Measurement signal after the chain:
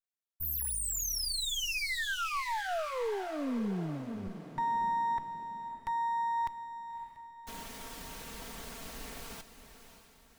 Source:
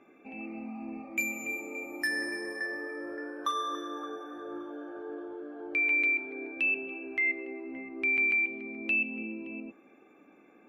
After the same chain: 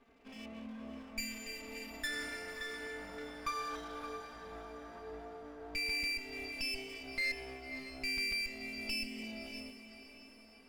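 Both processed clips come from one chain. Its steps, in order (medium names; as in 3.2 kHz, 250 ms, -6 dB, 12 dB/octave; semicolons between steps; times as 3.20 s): comb filter that takes the minimum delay 4.4 ms; echo that smears into a reverb 594 ms, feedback 44%, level -11 dB; trim -5.5 dB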